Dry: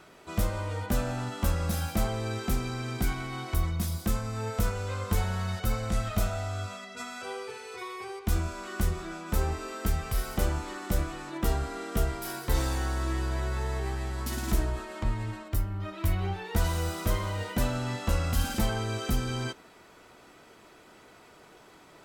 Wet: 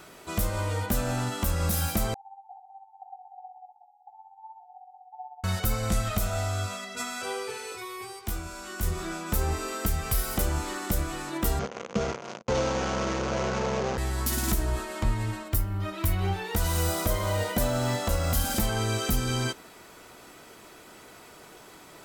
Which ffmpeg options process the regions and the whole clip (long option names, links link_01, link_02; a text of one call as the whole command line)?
ffmpeg -i in.wav -filter_complex "[0:a]asettb=1/sr,asplit=3[link_01][link_02][link_03];[link_01]atrim=end=2.144[link_04];[link_02]atrim=start=2.14:end=5.44,asetpts=PTS-STARTPTS,afade=type=in:duration=0.004:curve=qsin,afade=type=out:start_time=3.296:duration=0.004:curve=qsin,asuperpass=centerf=800:order=20:qfactor=4.9,tremolo=f=16:d=0.63[link_05];[link_03]atrim=start=5.436[link_06];[link_04][link_05]acrossfade=duration=0.004:curve1=hsin:curve2=qsin[link_07];[link_07][link_06]acrossfade=duration=0.004:curve1=qsin:curve2=hsin,asettb=1/sr,asplit=3[link_08][link_09][link_10];[link_08]atrim=end=7.724[link_11];[link_09]atrim=start=7.72:end=8.83,asetpts=PTS-STARTPTS,afade=type=in:duration=0.004:curve=qsin,afade=type=out:start_time=1.106:duration=0.004:curve=qsin,acrossover=split=110|250|3900[link_12][link_13][link_14][link_15];[link_12]acompressor=threshold=-37dB:ratio=3[link_16];[link_13]acompressor=threshold=-57dB:ratio=3[link_17];[link_14]acompressor=threshold=-47dB:ratio=3[link_18];[link_15]acompressor=threshold=-54dB:ratio=3[link_19];[link_16][link_17][link_18][link_19]amix=inputs=4:normalize=0,asplit=2[link_20][link_21];[link_21]adelay=19,volume=-6dB[link_22];[link_20][link_22]amix=inputs=2:normalize=0,atrim=end_sample=48951[link_23];[link_10]atrim=start=8.826[link_24];[link_11][link_23]acrossfade=duration=0.004:curve1=hsin:curve2=qsin[link_25];[link_25][link_24]acrossfade=duration=0.004:curve1=qsin:curve2=hsin,asettb=1/sr,asplit=3[link_26][link_27][link_28];[link_26]atrim=end=11.594[link_29];[link_27]atrim=start=11.59:end=13.98,asetpts=PTS-STARTPTS,afade=type=in:duration=0.004:curve=qsin,afade=type=out:start_time=2.386:duration=0.004:curve=qsin,acrusher=bits=4:mix=0:aa=0.5,adynamicsmooth=sensitivity=6.5:basefreq=610,highpass=130,equalizer=frequency=210:width_type=q:width=4:gain=7,equalizer=frequency=300:width_type=q:width=4:gain=-8,equalizer=frequency=510:width_type=q:width=4:gain=9,equalizer=frequency=1800:width_type=q:width=4:gain=-5,equalizer=frequency=3800:width_type=q:width=4:gain=-3,equalizer=frequency=6400:width_type=q:width=4:gain=8,lowpass=frequency=6500:width=0.5412,lowpass=frequency=6500:width=1.3066[link_30];[link_28]atrim=start=13.976[link_31];[link_29][link_30]acrossfade=duration=0.004:curve1=hsin:curve2=qsin[link_32];[link_32][link_31]acrossfade=duration=0.004:curve1=qsin:curve2=hsin,asettb=1/sr,asplit=3[link_33][link_34][link_35];[link_33]atrim=end=16.884[link_36];[link_34]atrim=start=16.88:end=18.59,asetpts=PTS-STARTPTS,afade=type=in:duration=0.004:curve=qsin,afade=type=out:start_time=1.706:duration=0.004:curve=qsin,equalizer=frequency=630:width=2.6:gain=7,bandreject=frequency=2700:width=15,acrusher=bits=9:mode=log:mix=0:aa=0.000001[link_37];[link_35]atrim=start=18.586[link_38];[link_36][link_37]acrossfade=duration=0.004:curve1=hsin:curve2=qsin[link_39];[link_39][link_38]acrossfade=duration=0.004:curve1=qsin:curve2=hsin,highshelf=frequency=7200:gain=11,alimiter=limit=-19dB:level=0:latency=1:release=194,volume=4dB" out.wav